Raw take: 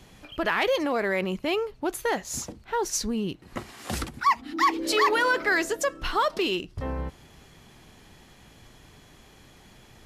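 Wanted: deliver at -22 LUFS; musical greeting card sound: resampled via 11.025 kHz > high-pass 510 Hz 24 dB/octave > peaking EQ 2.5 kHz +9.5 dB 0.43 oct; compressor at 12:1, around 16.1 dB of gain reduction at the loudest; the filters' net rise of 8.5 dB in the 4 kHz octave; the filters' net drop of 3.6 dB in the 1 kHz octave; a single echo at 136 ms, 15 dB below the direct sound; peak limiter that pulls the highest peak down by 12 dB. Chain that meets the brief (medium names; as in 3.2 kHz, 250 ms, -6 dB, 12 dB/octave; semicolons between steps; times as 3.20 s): peaking EQ 1 kHz -5 dB; peaking EQ 4 kHz +8.5 dB; compression 12:1, threshold -34 dBFS; peak limiter -32.5 dBFS; delay 136 ms -15 dB; resampled via 11.025 kHz; high-pass 510 Hz 24 dB/octave; peaking EQ 2.5 kHz +9.5 dB 0.43 oct; trim +20.5 dB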